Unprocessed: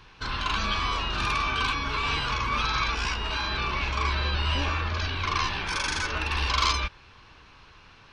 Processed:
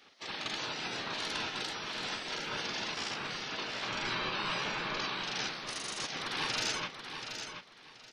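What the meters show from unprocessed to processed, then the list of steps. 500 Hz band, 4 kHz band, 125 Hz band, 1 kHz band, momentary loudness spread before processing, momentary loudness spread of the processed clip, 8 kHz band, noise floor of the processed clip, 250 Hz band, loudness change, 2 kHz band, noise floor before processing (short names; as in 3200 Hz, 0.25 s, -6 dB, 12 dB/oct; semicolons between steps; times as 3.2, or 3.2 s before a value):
-4.0 dB, -6.0 dB, -18.5 dB, -11.0 dB, 3 LU, 7 LU, -3.0 dB, -56 dBFS, -6.0 dB, -8.5 dB, -8.0 dB, -53 dBFS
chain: spectral gate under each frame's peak -15 dB weak; bell 1100 Hz +3 dB 0.26 oct; feedback echo 0.729 s, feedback 23%, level -8 dB; gain -2.5 dB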